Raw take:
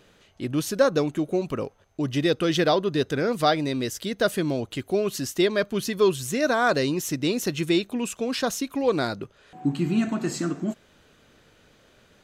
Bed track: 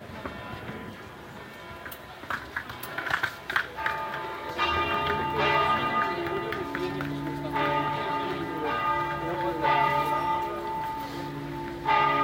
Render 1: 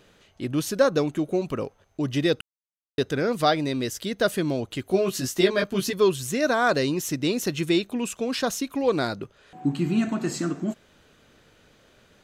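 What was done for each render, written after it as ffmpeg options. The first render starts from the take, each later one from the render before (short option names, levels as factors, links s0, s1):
-filter_complex "[0:a]asettb=1/sr,asplit=3[s0][s1][s2];[s0]atrim=end=4.894[s3];[s1]atrim=start=4.89:end=5.93,asetpts=PTS-STARTPTS,afade=t=in:d=0.004:c=qsin,afade=t=out:st=1.036:d=0.004:c=qsin,asplit=2[s4][s5];[s5]adelay=16,volume=0.75[s6];[s4][s6]amix=inputs=2:normalize=0,atrim=end_sample=45864[s7];[s2]atrim=start=5.926[s8];[s3][s7]acrossfade=d=0.004:c1=hsin:c2=qsin[s9];[s9][s8]acrossfade=d=0.004:c1=qsin:c2=hsin,asplit=3[s10][s11][s12];[s10]atrim=end=2.41,asetpts=PTS-STARTPTS,afade=t=out:st=2.406:d=0.004:c=hsin[s13];[s11]atrim=start=2.41:end=2.98,asetpts=PTS-STARTPTS,volume=0[s14];[s12]atrim=start=2.98,asetpts=PTS-STARTPTS,afade=t=in:d=0.004:c=hsin[s15];[s13][s14][s15]concat=n=3:v=0:a=1"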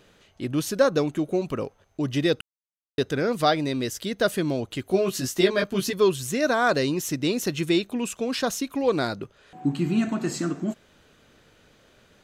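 -af anull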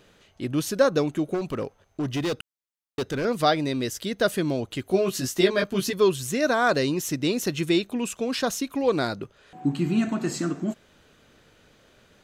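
-filter_complex "[0:a]asettb=1/sr,asplit=3[s0][s1][s2];[s0]atrim=end=1.344[s3];[s1]atrim=start=1.34:end=3.25,asetpts=PTS-STARTPTS,afade=t=in:d=0.004:c=qsin,afade=t=out:st=1.906:d=0.004:c=qsin,asoftclip=type=hard:threshold=0.0708[s4];[s2]atrim=start=3.246[s5];[s3][s4]acrossfade=d=0.004:c1=hsin:c2=qsin[s6];[s6][s5]acrossfade=d=0.004:c1=qsin:c2=hsin"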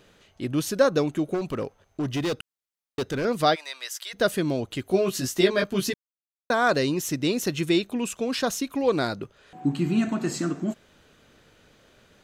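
-filter_complex "[0:a]asplit=3[s0][s1][s2];[s0]afade=t=out:st=3.54:d=0.02[s3];[s1]highpass=f=830:w=0.5412,highpass=f=830:w=1.3066,afade=t=in:st=3.54:d=0.02,afade=t=out:st=4.13:d=0.02[s4];[s2]afade=t=in:st=4.13:d=0.02[s5];[s3][s4][s5]amix=inputs=3:normalize=0,asplit=3[s6][s7][s8];[s6]atrim=end=5.94,asetpts=PTS-STARTPTS,afade=t=out:st=5.936:d=0.004:c=hsin[s9];[s7]atrim=start=5.94:end=6.5,asetpts=PTS-STARTPTS,volume=0[s10];[s8]atrim=start=6.5,asetpts=PTS-STARTPTS,afade=t=in:d=0.004:c=hsin[s11];[s9][s10][s11]concat=n=3:v=0:a=1"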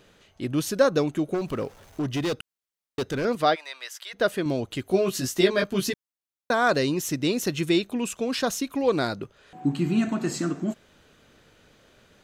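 -filter_complex "[0:a]asettb=1/sr,asplit=3[s0][s1][s2];[s0]atrim=end=1.364[s3];[s1]atrim=start=1.36:end=2.02,asetpts=PTS-STARTPTS,afade=t=in:d=0.004:c=qsin,afade=t=out:st=0.656:d=0.004:c=qsin,aeval=exprs='val(0)+0.5*0.00422*sgn(val(0))':c=same[s4];[s2]atrim=start=2.016[s5];[s3][s4]acrossfade=d=0.004:c1=hsin:c2=qsin[s6];[s6][s5]acrossfade=d=0.004:c1=qsin:c2=hsin,asettb=1/sr,asplit=3[s7][s8][s9];[s7]atrim=end=3.354[s10];[s8]atrim=start=3.35:end=4.46,asetpts=PTS-STARTPTS,afade=t=in:d=0.004:c=qsin,afade=t=out:st=1.106:d=0.004:c=qsin,bass=f=250:g=-6,treble=f=4000:g=-7[s11];[s9]atrim=start=4.456[s12];[s10][s11]acrossfade=d=0.004:c1=hsin:c2=qsin[s13];[s13][s12]acrossfade=d=0.004:c1=qsin:c2=hsin"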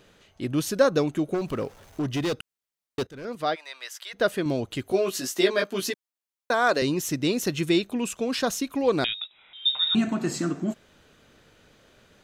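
-filter_complex "[0:a]asettb=1/sr,asplit=3[s0][s1][s2];[s0]atrim=end=4.924[s3];[s1]atrim=start=4.92:end=6.82,asetpts=PTS-STARTPTS,afade=t=in:d=0.004:c=qsin,afade=t=out:st=1.896:d=0.004:c=qsin,highpass=290[s4];[s2]atrim=start=6.816[s5];[s3][s4]acrossfade=d=0.004:c1=hsin:c2=qsin[s6];[s6][s5]acrossfade=d=0.004:c1=qsin:c2=hsin,asettb=1/sr,asplit=3[s7][s8][s9];[s7]atrim=end=9.044[s10];[s8]atrim=start=9.04:end=9.95,asetpts=PTS-STARTPTS,afade=t=in:d=0.004:c=qsin,afade=t=out:st=0.906:d=0.004:c=qsin,lowpass=f=3300:t=q:w=0.5098,lowpass=f=3300:t=q:w=0.6013,lowpass=f=3300:t=q:w=0.9,lowpass=f=3300:t=q:w=2.563,afreqshift=-3900[s11];[s9]atrim=start=9.946[s12];[s10][s11]acrossfade=d=0.004:c1=hsin:c2=qsin[s13];[s13][s12]acrossfade=d=0.004:c1=qsin:c2=hsin,asplit=2[s14][s15];[s14]atrim=end=3.07,asetpts=PTS-STARTPTS,afade=t=out:st=3.066:d=0.004:c=hsin:silence=0.11885[s16];[s15]atrim=start=3.07,asetpts=PTS-STARTPTS,afade=t=in:d=0.84:silence=0.11885[s17];[s16][s17]concat=n=2:v=0:a=1"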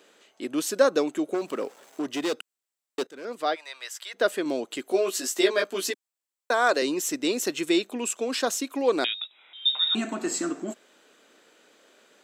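-af "highpass=f=270:w=0.5412,highpass=f=270:w=1.3066,equalizer=f=7700:t=o:w=0.2:g=8.5"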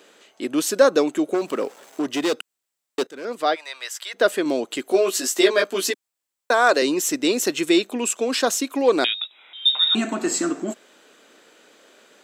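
-af "acontrast=42"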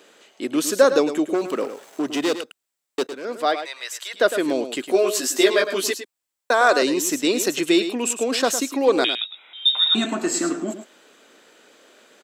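-af "aecho=1:1:107:0.299"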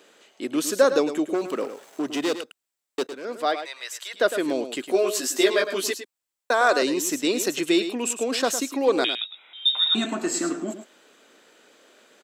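-af "volume=0.708"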